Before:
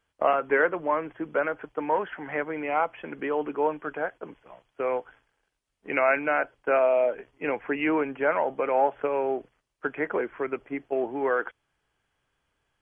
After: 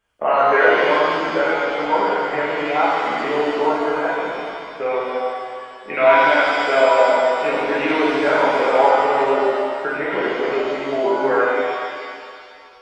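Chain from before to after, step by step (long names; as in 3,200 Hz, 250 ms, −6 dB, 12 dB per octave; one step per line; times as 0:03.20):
reverb with rising layers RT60 2.2 s, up +7 semitones, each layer −8 dB, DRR −8 dB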